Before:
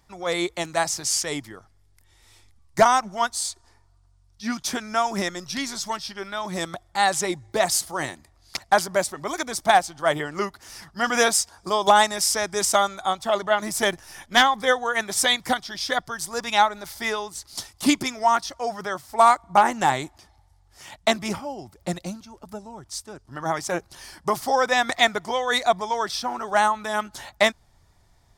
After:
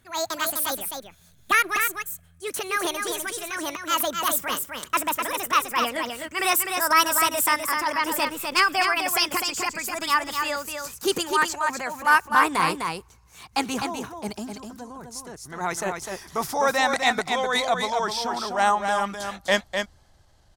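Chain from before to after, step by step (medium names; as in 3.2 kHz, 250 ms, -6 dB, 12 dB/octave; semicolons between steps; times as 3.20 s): gliding tape speed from 189% -> 87%; transient shaper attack -6 dB, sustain +2 dB; delay 253 ms -5.5 dB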